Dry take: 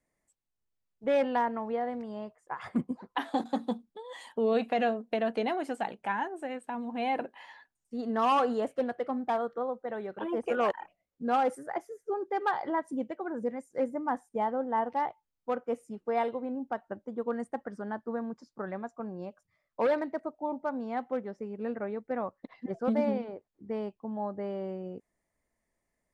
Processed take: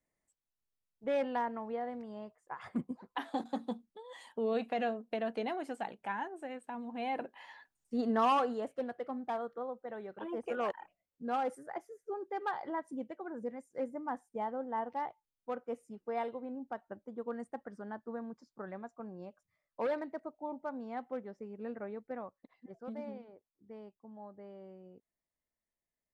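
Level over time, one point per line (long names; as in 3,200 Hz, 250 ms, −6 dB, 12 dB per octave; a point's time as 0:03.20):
0:07.11 −6 dB
0:08.00 +2.5 dB
0:08.55 −7 dB
0:22.06 −7 dB
0:22.50 −15 dB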